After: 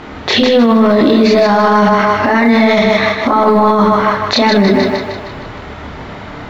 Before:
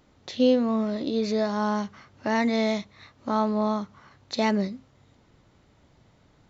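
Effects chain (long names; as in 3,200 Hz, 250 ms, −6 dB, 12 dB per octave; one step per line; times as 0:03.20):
low-pass filter 2,000 Hz 12 dB per octave
spectral tilt +2.5 dB per octave
notch filter 540 Hz, Q 12
compressor whose output falls as the input rises −32 dBFS, ratio −1
multi-voice chorus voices 6, 0.52 Hz, delay 28 ms, depth 2.7 ms
floating-point word with a short mantissa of 6 bits
on a send: echo with a time of its own for lows and highs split 420 Hz, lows 80 ms, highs 155 ms, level −7 dB
on the sum: boost into a limiter +35.5 dB
level −1 dB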